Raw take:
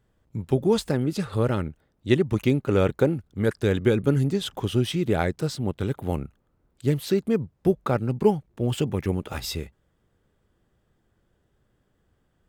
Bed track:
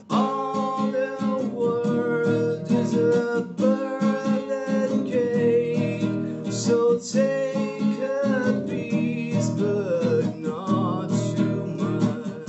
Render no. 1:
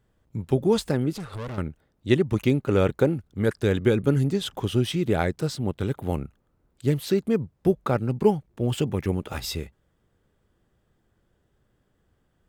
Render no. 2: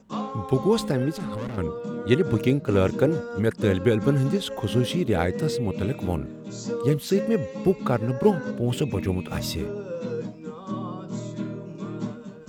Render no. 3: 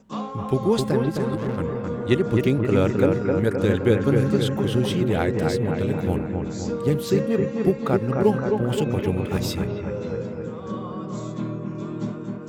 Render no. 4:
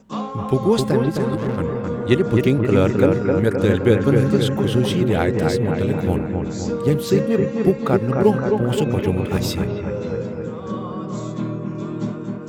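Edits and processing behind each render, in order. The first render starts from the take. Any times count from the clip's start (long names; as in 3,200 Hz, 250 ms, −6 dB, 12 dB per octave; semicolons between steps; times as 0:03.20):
0:01.12–0:01.58: tube saturation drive 31 dB, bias 0.55
mix in bed track −9 dB
bucket-brigade delay 261 ms, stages 4,096, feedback 62%, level −4 dB
level +3.5 dB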